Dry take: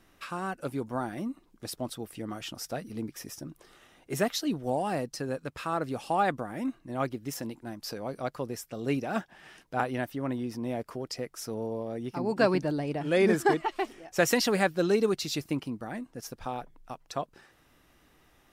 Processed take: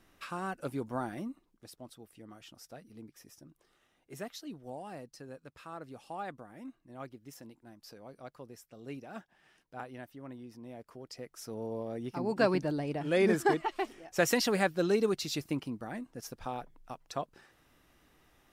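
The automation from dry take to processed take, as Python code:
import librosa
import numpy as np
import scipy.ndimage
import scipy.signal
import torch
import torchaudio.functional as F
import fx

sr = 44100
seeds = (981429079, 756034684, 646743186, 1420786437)

y = fx.gain(x, sr, db=fx.line((1.14, -3.0), (1.7, -14.0), (10.74, -14.0), (11.79, -3.0)))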